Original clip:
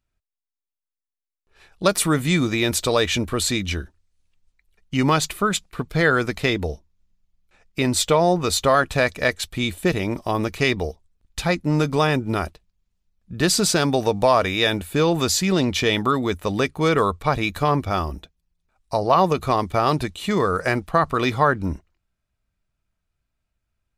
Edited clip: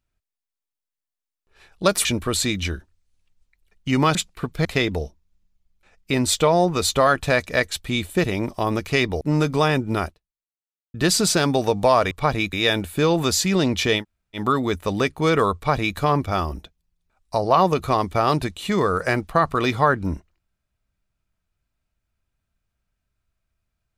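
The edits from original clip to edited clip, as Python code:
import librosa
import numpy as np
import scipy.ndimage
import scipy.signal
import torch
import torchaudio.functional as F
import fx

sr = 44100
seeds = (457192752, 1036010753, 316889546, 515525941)

y = fx.edit(x, sr, fx.cut(start_s=2.05, length_s=1.06),
    fx.cut(start_s=5.21, length_s=0.3),
    fx.cut(start_s=6.01, length_s=0.32),
    fx.cut(start_s=10.89, length_s=0.71),
    fx.fade_out_span(start_s=12.43, length_s=0.9, curve='exp'),
    fx.insert_room_tone(at_s=15.97, length_s=0.38, crossfade_s=0.1),
    fx.duplicate(start_s=17.14, length_s=0.42, to_s=14.5), tone=tone)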